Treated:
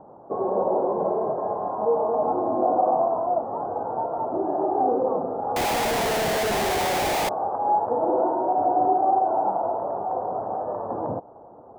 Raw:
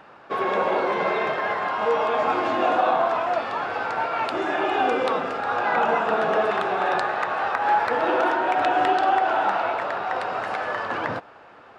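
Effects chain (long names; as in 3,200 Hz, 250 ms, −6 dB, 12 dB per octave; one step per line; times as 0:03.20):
Butterworth low-pass 880 Hz 36 dB per octave
in parallel at −3 dB: downward compressor, threshold −36 dBFS, peak gain reduction 17.5 dB
0:05.56–0:07.29: on the sum: comparator with hysteresis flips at −38.5 dBFS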